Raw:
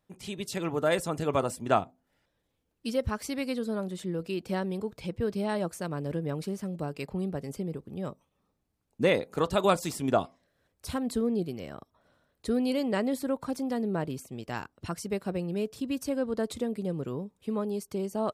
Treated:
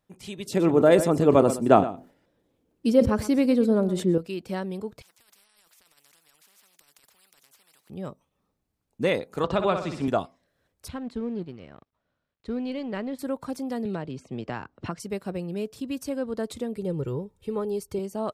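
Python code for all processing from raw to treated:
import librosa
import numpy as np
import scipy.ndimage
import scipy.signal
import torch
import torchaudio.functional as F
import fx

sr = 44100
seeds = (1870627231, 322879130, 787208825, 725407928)

y = fx.chain(x, sr, fx.peak_eq(hz=320.0, db=12.5, octaves=2.6),
    fx.echo_single(ms=121, db=-15.5),
    fx.sustainer(db_per_s=140.0), at=(0.46, 4.18))
y = fx.chain(y, sr, fx.highpass(hz=1100.0, slope=12),
    fx.over_compress(threshold_db=-47.0, ratio=-1.0),
    fx.spectral_comp(ratio=10.0), at=(5.02, 7.9))
y = fx.chain(y, sr, fx.lowpass(hz=3300.0, slope=12),
    fx.room_flutter(wall_m=10.4, rt60_s=0.47),
    fx.band_squash(depth_pct=70), at=(9.44, 10.08))
y = fx.chain(y, sr, fx.law_mismatch(coded='A'),
    fx.lowpass(hz=3200.0, slope=12),
    fx.peak_eq(hz=710.0, db=-4.0, octaves=2.8), at=(10.88, 13.19))
y = fx.chain(y, sr, fx.air_absorb(metres=120.0),
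    fx.band_squash(depth_pct=100), at=(13.85, 15.0))
y = fx.chain(y, sr, fx.low_shelf(hz=170.0, db=11.5),
    fx.comb(ms=2.2, depth=0.55), at=(16.76, 17.99))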